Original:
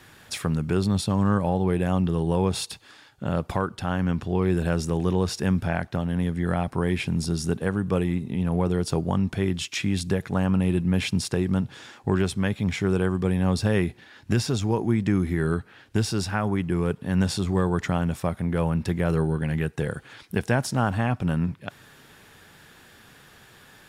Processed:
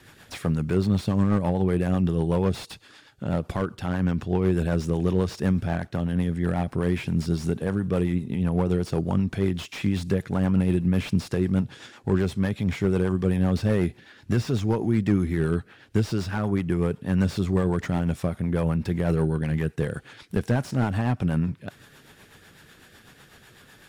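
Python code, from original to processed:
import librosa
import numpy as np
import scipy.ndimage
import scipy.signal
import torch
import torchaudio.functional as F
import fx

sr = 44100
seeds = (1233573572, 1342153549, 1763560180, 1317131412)

y = fx.rotary(x, sr, hz=8.0)
y = fx.slew_limit(y, sr, full_power_hz=48.0)
y = y * librosa.db_to_amplitude(2.0)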